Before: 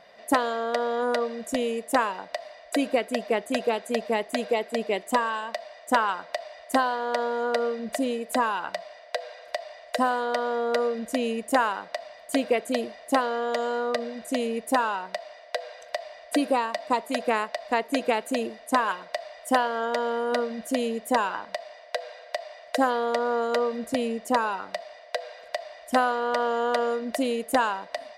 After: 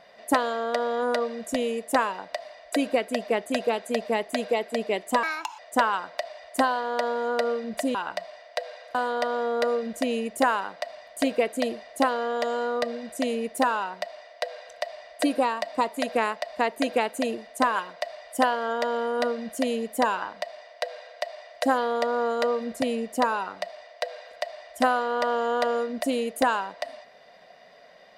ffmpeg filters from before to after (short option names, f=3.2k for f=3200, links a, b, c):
-filter_complex "[0:a]asplit=5[a][b][c][d][e];[a]atrim=end=5.234[f];[b]atrim=start=5.23:end=5.74,asetpts=PTS-STARTPTS,asetrate=63063,aresample=44100[g];[c]atrim=start=5.736:end=8.102[h];[d]atrim=start=8.518:end=9.522[i];[e]atrim=start=10.068[j];[f][g]acrossfade=d=0.004:c1=hsin:c2=hsin[k];[k][h]acrossfade=d=0.004:c1=hsin:c2=hsin[l];[l][i]acrossfade=d=0.004:c1=hsin:c2=hsin[m];[m][j]acrossfade=d=0.004:c1=hsin:c2=hsin"